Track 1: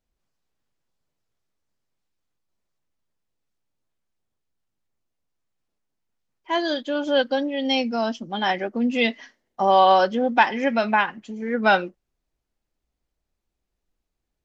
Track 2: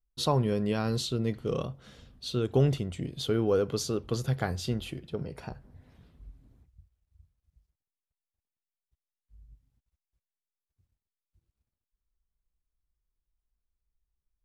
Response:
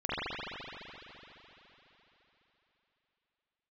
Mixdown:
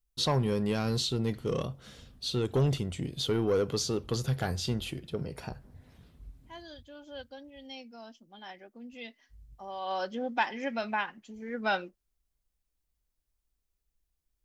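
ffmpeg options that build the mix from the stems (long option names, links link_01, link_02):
-filter_complex "[0:a]volume=-12dB,afade=type=in:start_time=9.8:duration=0.36:silence=0.251189[link_01];[1:a]asoftclip=type=tanh:threshold=-20.5dB,volume=0.5dB[link_02];[link_01][link_02]amix=inputs=2:normalize=0,acrossover=split=6900[link_03][link_04];[link_04]acompressor=threshold=-54dB:ratio=4:attack=1:release=60[link_05];[link_03][link_05]amix=inputs=2:normalize=0,highshelf=frequency=3900:gain=7"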